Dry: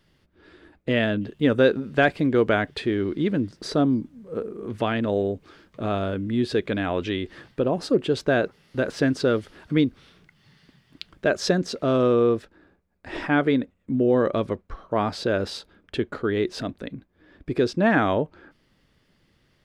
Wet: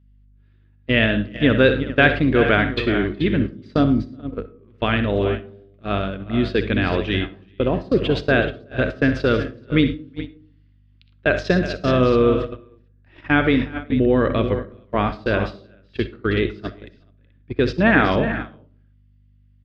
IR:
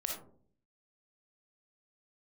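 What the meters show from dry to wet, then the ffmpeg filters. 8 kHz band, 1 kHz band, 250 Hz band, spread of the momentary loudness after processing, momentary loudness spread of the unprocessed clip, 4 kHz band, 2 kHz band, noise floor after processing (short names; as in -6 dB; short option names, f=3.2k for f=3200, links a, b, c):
n/a, +3.5 dB, +3.5 dB, 15 LU, 13 LU, +5.0 dB, +7.0 dB, -55 dBFS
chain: -filter_complex "[0:a]aeval=exprs='val(0)+0.02*(sin(2*PI*50*n/s)+sin(2*PI*2*50*n/s)/2+sin(2*PI*3*50*n/s)/3+sin(2*PI*4*50*n/s)/4+sin(2*PI*5*50*n/s)/5)':c=same,firequalizer=gain_entry='entry(830,0);entry(1200,4);entry(2600,9);entry(8500,-15)':delay=0.05:min_phase=1,aecho=1:1:63|78|109|373|431:0.251|0.141|0.133|0.266|0.266,agate=range=-25dB:threshold=-24dB:ratio=16:detection=peak,equalizer=f=73:w=0.31:g=5.5,asplit=2[a][b];[1:a]atrim=start_sample=2205,asetrate=43659,aresample=44100[c];[b][c]afir=irnorm=-1:irlink=0,volume=-13.5dB[d];[a][d]amix=inputs=2:normalize=0,volume=-1dB"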